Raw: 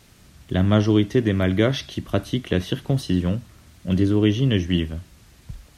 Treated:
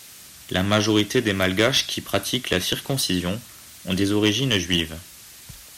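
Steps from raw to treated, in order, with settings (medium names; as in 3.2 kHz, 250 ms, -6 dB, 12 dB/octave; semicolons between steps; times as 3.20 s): tilt EQ +3.5 dB/octave; one-sided clip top -18.5 dBFS; trim +4.5 dB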